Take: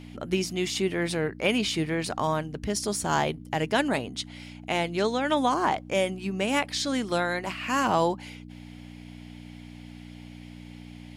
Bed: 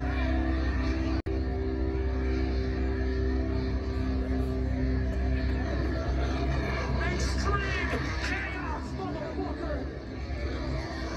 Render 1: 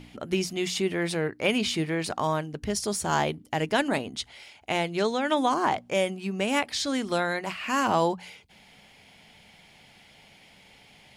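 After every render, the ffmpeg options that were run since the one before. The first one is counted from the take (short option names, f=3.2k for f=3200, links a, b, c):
-af "bandreject=f=60:t=h:w=4,bandreject=f=120:t=h:w=4,bandreject=f=180:t=h:w=4,bandreject=f=240:t=h:w=4,bandreject=f=300:t=h:w=4"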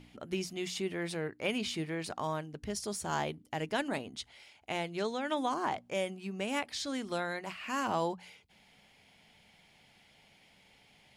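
-af "volume=-8.5dB"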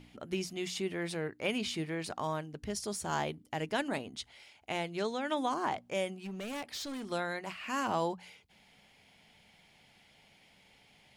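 -filter_complex "[0:a]asettb=1/sr,asplit=3[a][b][c];[a]atrim=end=6.154[d];[b]atrim=start=6.15:end=7.11,asetpts=PTS-STARTPTS,afade=t=in:d=0.004:c=qsin,afade=t=out:st=0.956:d=0.004:c=qsin,asoftclip=type=hard:threshold=-37dB[e];[c]atrim=start=7.106[f];[d][e]acrossfade=d=0.004:c1=hsin:c2=qsin[g];[g][f]acrossfade=d=0.004:c1=qsin:c2=hsin"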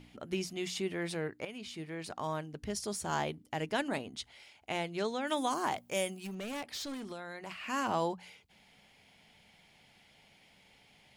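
-filter_complex "[0:a]asettb=1/sr,asplit=3[a][b][c];[a]atrim=end=5.274[d];[b]atrim=start=5.27:end=6.35,asetpts=PTS-STARTPTS,afade=t=in:d=0.004:c=qsin,afade=t=out:st=1.076:d=0.004:c=qsin,aemphasis=mode=production:type=50fm[e];[c]atrim=start=6.346[f];[d][e]acrossfade=d=0.004:c1=hsin:c2=qsin[g];[g][f]acrossfade=d=0.004:c1=qsin:c2=hsin,asettb=1/sr,asplit=3[h][i][j];[h]atrim=end=6.944[k];[i]atrim=start=6.94:end=7.51,asetpts=PTS-STARTPTS,afade=t=in:d=0.004:c=qsin,afade=t=out:st=0.566:d=0.004:c=qsin,acompressor=threshold=-39dB:ratio=6:attack=3.2:release=140:knee=1:detection=peak[l];[j]atrim=start=7.506[m];[k][l]acrossfade=d=0.004:c1=hsin:c2=qsin[n];[n][m]acrossfade=d=0.004:c1=qsin:c2=hsin,asplit=2[o][p];[o]atrim=end=1.45,asetpts=PTS-STARTPTS,afade=t=out:st=1.446:d=0.004:c=hsin:silence=0.188365[q];[p]atrim=start=1.45,asetpts=PTS-STARTPTS,afade=t=in:d=1.01:silence=0.188365[r];[q][r]concat=n=2:v=0:a=1"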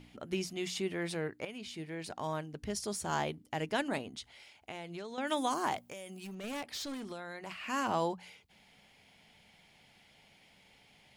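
-filter_complex "[0:a]asettb=1/sr,asplit=3[a][b][c];[a]atrim=end=1.644[d];[b]atrim=start=1.64:end=2.33,asetpts=PTS-STARTPTS,afade=t=in:d=0.004:c=qsin,afade=t=out:st=0.686:d=0.004:c=qsin,equalizer=f=1.2k:t=o:w=0.23:g=-7[e];[c]atrim=start=2.326[f];[d][e]acrossfade=d=0.004:c1=hsin:c2=qsin[g];[g][f]acrossfade=d=0.004:c1=qsin:c2=hsin,asettb=1/sr,asplit=3[h][i][j];[h]atrim=end=4.184[k];[i]atrim=start=4.18:end=5.18,asetpts=PTS-STARTPTS,afade=t=in:d=0.004:c=qsin,afade=t=out:st=0.996:d=0.004:c=qsin,acompressor=threshold=-39dB:ratio=6:attack=3.2:release=140:knee=1:detection=peak[l];[j]atrim=start=5.176[m];[k][l]acrossfade=d=0.004:c1=hsin:c2=qsin[n];[n][m]acrossfade=d=0.004:c1=qsin:c2=hsin,asettb=1/sr,asplit=3[o][p][q];[o]atrim=end=5.884[r];[p]atrim=start=5.88:end=6.44,asetpts=PTS-STARTPTS,afade=t=in:d=0.004:c=qsin,afade=t=out:st=0.556:d=0.004:c=qsin,acompressor=threshold=-41dB:ratio=16:attack=3.2:release=140:knee=1:detection=peak[s];[q]atrim=start=6.436[t];[r][s]acrossfade=d=0.004:c1=hsin:c2=qsin[u];[u][t]acrossfade=d=0.004:c1=qsin:c2=hsin"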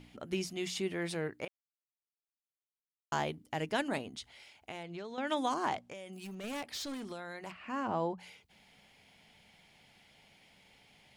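-filter_complex "[0:a]asettb=1/sr,asplit=3[a][b][c];[a]atrim=end=4.834[d];[b]atrim=start=4.83:end=6.13,asetpts=PTS-STARTPTS,afade=t=in:d=0.004:c=qsin,afade=t=out:st=1.296:d=0.004:c=qsin,adynamicsmooth=sensitivity=2.5:basefreq=6.4k[e];[c]atrim=start=6.126[f];[d][e]acrossfade=d=0.004:c1=hsin:c2=qsin[g];[g][f]acrossfade=d=0.004:c1=qsin:c2=hsin,asplit=3[h][i][j];[h]afade=t=out:st=7.5:d=0.02[k];[i]lowpass=f=1k:p=1,afade=t=in:st=7.5:d=0.02,afade=t=out:st=8.17:d=0.02[l];[j]afade=t=in:st=8.17:d=0.02[m];[k][l][m]amix=inputs=3:normalize=0,asplit=3[n][o][p];[n]atrim=end=1.48,asetpts=PTS-STARTPTS,afade=t=out:st=1.476:d=0.004:c=hsin[q];[o]atrim=start=1.48:end=3.12,asetpts=PTS-STARTPTS,volume=0[r];[p]atrim=start=3.12,asetpts=PTS-STARTPTS,afade=t=in:d=0.004:c=hsin[s];[q][r][s]concat=n=3:v=0:a=1"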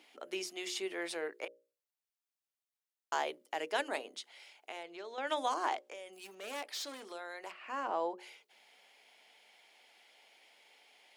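-af "highpass=f=370:w=0.5412,highpass=f=370:w=1.3066,bandreject=f=60:t=h:w=6,bandreject=f=120:t=h:w=6,bandreject=f=180:t=h:w=6,bandreject=f=240:t=h:w=6,bandreject=f=300:t=h:w=6,bandreject=f=360:t=h:w=6,bandreject=f=420:t=h:w=6,bandreject=f=480:t=h:w=6,bandreject=f=540:t=h:w=6,bandreject=f=600:t=h:w=6"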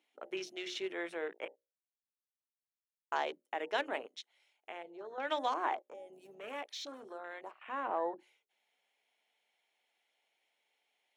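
-af "afwtdn=0.00447,bandreject=f=4.8k:w=6.6"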